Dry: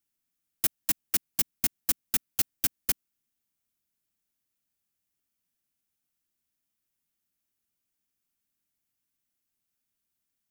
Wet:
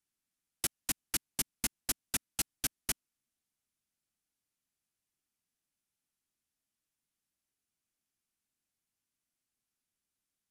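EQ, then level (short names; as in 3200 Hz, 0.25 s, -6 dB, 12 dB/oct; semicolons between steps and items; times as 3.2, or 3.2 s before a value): LPF 12000 Hz 24 dB/oct; -2.5 dB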